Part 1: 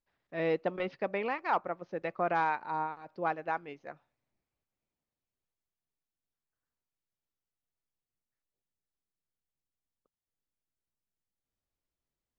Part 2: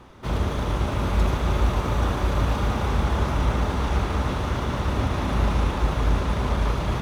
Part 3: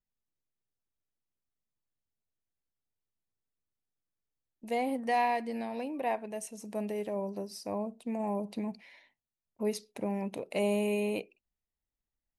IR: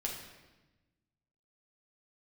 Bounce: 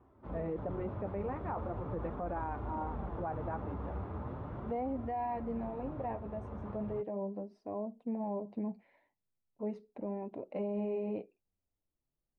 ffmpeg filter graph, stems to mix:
-filter_complex "[0:a]lowshelf=f=430:g=8,volume=0.944[s0];[1:a]highpass=55,volume=0.251,asplit=2[s1][s2];[s2]volume=0.211[s3];[2:a]volume=1.12,asplit=2[s4][s5];[s5]apad=whole_len=309486[s6];[s1][s6]sidechaincompress=threshold=0.0224:ratio=8:attack=5.7:release=1230[s7];[3:a]atrim=start_sample=2205[s8];[s3][s8]afir=irnorm=-1:irlink=0[s9];[s0][s7][s4][s9]amix=inputs=4:normalize=0,lowpass=1000,flanger=delay=2.8:depth=7.8:regen=-32:speed=0.39:shape=sinusoidal,alimiter=level_in=1.78:limit=0.0631:level=0:latency=1:release=26,volume=0.562"

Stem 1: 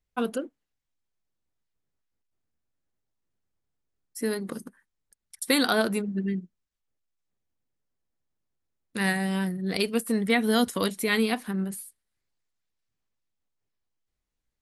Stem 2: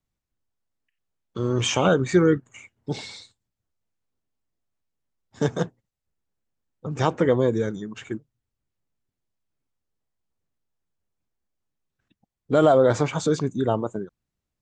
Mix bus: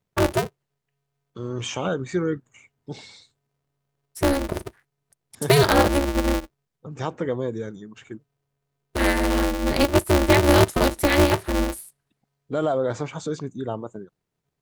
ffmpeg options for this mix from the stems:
-filter_complex "[0:a]equalizer=f=380:t=o:w=2.7:g=8.5,aeval=exprs='val(0)*sgn(sin(2*PI*140*n/s))':c=same,volume=1.06[s0];[1:a]volume=0.473[s1];[s0][s1]amix=inputs=2:normalize=0"

